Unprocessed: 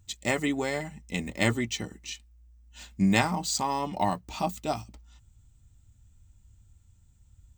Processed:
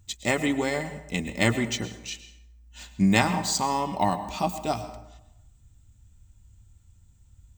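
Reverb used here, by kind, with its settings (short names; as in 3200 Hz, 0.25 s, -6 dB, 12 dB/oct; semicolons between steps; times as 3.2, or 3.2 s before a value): plate-style reverb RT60 0.87 s, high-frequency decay 0.6×, pre-delay 95 ms, DRR 11.5 dB; gain +2.5 dB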